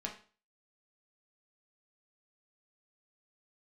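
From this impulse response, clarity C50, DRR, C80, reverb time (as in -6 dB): 9.0 dB, -0.5 dB, 14.0 dB, 0.40 s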